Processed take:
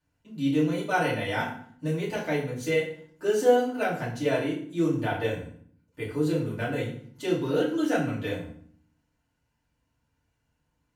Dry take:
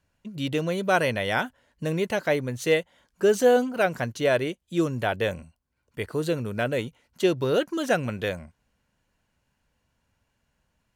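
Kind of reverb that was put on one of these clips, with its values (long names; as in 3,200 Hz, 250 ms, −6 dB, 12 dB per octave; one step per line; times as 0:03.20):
feedback delay network reverb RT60 0.56 s, low-frequency decay 1.55×, high-frequency decay 0.8×, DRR −8 dB
level −12.5 dB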